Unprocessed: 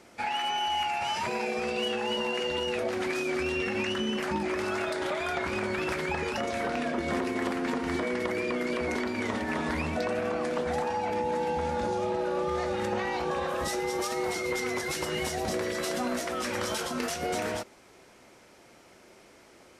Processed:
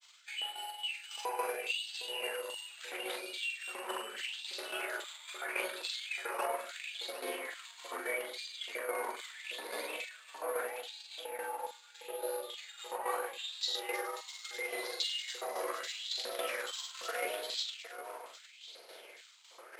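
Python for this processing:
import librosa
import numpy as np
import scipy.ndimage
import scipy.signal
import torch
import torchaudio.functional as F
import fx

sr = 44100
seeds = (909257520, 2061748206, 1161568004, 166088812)

p1 = fx.low_shelf(x, sr, hz=350.0, db=-7.5)
p2 = fx.over_compress(p1, sr, threshold_db=-38.0, ratio=-1.0)
p3 = fx.granulator(p2, sr, seeds[0], grain_ms=100.0, per_s=20.0, spray_ms=100.0, spread_st=0)
p4 = fx.filter_lfo_highpass(p3, sr, shape='square', hz=1.2, low_hz=480.0, high_hz=3600.0, q=3.0)
p5 = fx.tremolo_shape(p4, sr, shape='saw_down', hz=3.6, depth_pct=70)
p6 = p5 + fx.echo_multitap(p5, sr, ms=(42, 760), db=(-6.0, -10.0), dry=0)
p7 = (np.kron(scipy.signal.resample_poly(p6, 1, 4), np.eye(4)[0]) * 4)[:len(p6)]
p8 = fx.bandpass_edges(p7, sr, low_hz=220.0, high_hz=5700.0)
p9 = fx.bell_lfo(p8, sr, hz=0.77, low_hz=970.0, high_hz=4300.0, db=15)
y = p9 * librosa.db_to_amplitude(-3.5)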